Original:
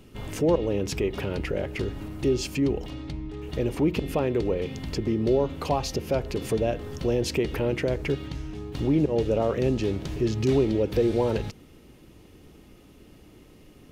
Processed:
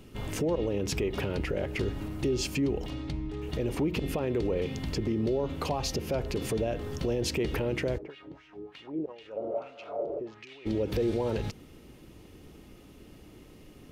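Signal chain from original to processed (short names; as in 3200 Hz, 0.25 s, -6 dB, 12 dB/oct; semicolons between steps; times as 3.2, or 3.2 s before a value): 9.43–10.16 spectral repair 310–2100 Hz before; limiter -20.5 dBFS, peak gain reduction 8.5 dB; 7.97–10.65 LFO band-pass sine 4.2 Hz -> 0.96 Hz 360–2700 Hz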